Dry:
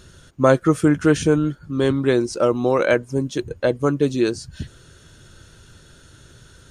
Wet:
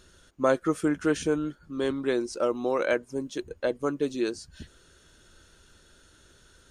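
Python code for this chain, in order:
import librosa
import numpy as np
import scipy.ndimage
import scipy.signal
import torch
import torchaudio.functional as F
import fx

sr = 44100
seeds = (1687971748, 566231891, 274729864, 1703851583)

y = fx.peak_eq(x, sr, hz=120.0, db=-13.5, octaves=0.92)
y = F.gain(torch.from_numpy(y), -7.5).numpy()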